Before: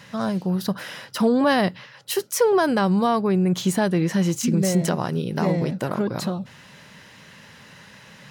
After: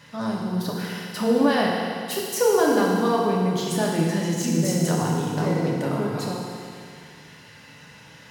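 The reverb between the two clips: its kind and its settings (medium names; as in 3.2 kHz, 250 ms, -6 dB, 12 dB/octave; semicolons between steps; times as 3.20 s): FDN reverb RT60 2.3 s, low-frequency decay 1×, high-frequency decay 1×, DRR -3.5 dB; trim -5.5 dB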